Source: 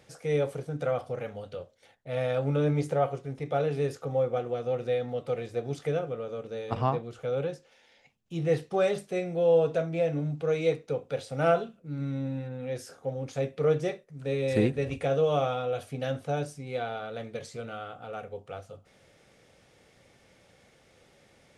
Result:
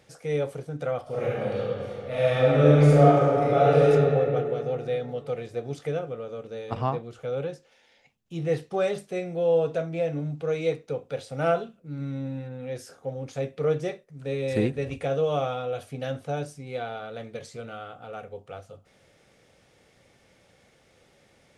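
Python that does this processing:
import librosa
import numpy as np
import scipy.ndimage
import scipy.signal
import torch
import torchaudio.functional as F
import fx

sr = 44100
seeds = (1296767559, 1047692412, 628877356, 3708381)

y = fx.reverb_throw(x, sr, start_s=1.02, length_s=2.85, rt60_s=2.6, drr_db=-9.5)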